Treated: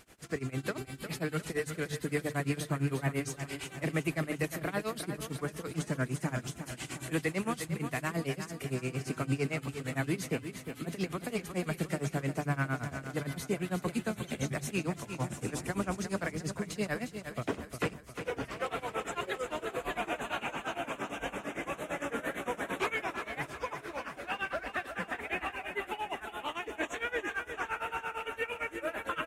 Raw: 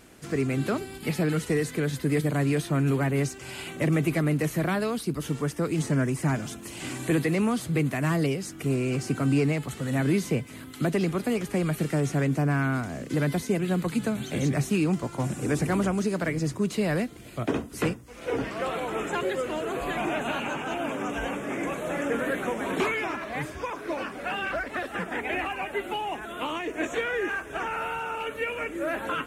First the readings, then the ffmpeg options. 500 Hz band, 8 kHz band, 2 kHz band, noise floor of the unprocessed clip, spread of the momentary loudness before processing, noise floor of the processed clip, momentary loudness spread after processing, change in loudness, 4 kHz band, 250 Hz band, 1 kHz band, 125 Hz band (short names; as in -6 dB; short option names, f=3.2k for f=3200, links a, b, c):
-7.5 dB, -4.5 dB, -4.5 dB, -42 dBFS, 7 LU, -51 dBFS, 5 LU, -7.5 dB, -5.0 dB, -9.5 dB, -5.5 dB, -9.0 dB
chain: -filter_complex "[0:a]equalizer=f=270:t=o:w=1.9:g=-6,bandreject=f=50:t=h:w=6,bandreject=f=100:t=h:w=6,bandreject=f=150:t=h:w=6,tremolo=f=8.8:d=0.94,asplit=2[a][b];[b]aecho=0:1:355|710|1065|1420|1775:0.355|0.16|0.0718|0.0323|0.0145[c];[a][c]amix=inputs=2:normalize=0,volume=-1dB"